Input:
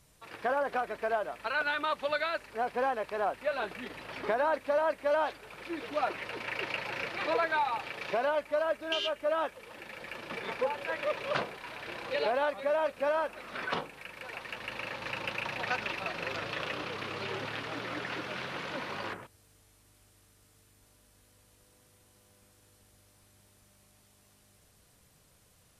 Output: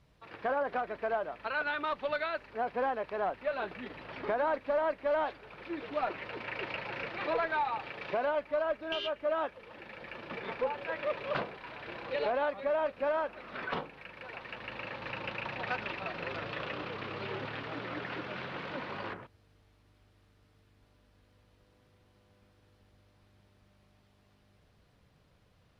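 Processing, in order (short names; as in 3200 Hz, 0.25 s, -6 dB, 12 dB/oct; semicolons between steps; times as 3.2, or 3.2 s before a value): tone controls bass +1 dB, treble +9 dB; one-sided clip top -25 dBFS; air absorption 350 m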